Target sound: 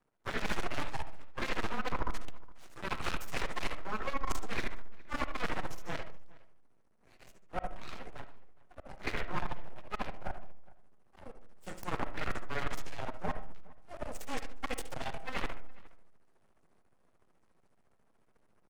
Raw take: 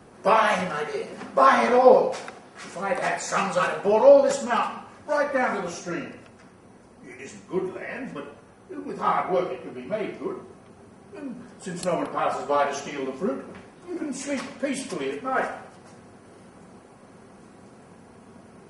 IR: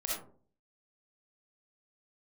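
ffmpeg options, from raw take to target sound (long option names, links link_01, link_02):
-filter_complex "[0:a]aeval=exprs='0.708*(cos(1*acos(clip(val(0)/0.708,-1,1)))-cos(1*PI/2))+0.224*(cos(3*acos(clip(val(0)/0.708,-1,1)))-cos(3*PI/2))+0.282*(cos(6*acos(clip(val(0)/0.708,-1,1)))-cos(6*PI/2))':channel_layout=same,afreqshift=-14,aeval=exprs='max(val(0),0)':channel_layout=same,areverse,acompressor=threshold=-30dB:ratio=12,areverse,asplit=2[link_01][link_02];[link_02]adelay=414,volume=-22dB,highshelf=frequency=4000:gain=-9.32[link_03];[link_01][link_03]amix=inputs=2:normalize=0,asplit=2[link_04][link_05];[1:a]atrim=start_sample=2205,lowpass=2800[link_06];[link_05][link_06]afir=irnorm=-1:irlink=0,volume=-12.5dB[link_07];[link_04][link_07]amix=inputs=2:normalize=0"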